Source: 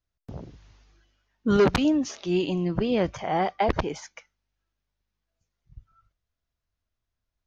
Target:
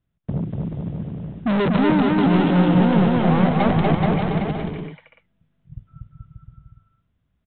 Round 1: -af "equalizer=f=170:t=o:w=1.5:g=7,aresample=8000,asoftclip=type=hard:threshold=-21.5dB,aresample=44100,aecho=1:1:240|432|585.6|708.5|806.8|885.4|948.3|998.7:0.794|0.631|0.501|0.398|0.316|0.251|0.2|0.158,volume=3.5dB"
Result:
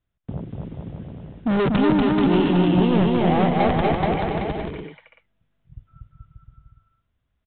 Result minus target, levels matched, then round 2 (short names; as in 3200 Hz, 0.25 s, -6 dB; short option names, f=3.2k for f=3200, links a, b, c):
125 Hz band -3.5 dB
-af "equalizer=f=170:t=o:w=1.5:g=17,aresample=8000,asoftclip=type=hard:threshold=-21.5dB,aresample=44100,aecho=1:1:240|432|585.6|708.5|806.8|885.4|948.3|998.7:0.794|0.631|0.501|0.398|0.316|0.251|0.2|0.158,volume=3.5dB"